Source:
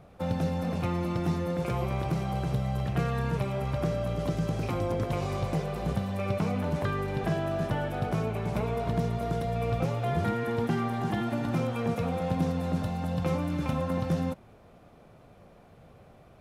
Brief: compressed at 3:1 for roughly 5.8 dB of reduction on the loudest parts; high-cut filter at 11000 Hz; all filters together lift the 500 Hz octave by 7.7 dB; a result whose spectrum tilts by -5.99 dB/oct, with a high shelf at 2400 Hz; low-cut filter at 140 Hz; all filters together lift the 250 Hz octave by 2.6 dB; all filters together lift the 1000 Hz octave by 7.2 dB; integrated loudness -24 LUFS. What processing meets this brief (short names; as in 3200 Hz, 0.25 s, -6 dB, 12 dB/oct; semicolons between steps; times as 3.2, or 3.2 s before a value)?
HPF 140 Hz; LPF 11000 Hz; bell 250 Hz +3 dB; bell 500 Hz +6.5 dB; bell 1000 Hz +6 dB; high shelf 2400 Hz +6 dB; compressor 3:1, threshold -28 dBFS; gain +7 dB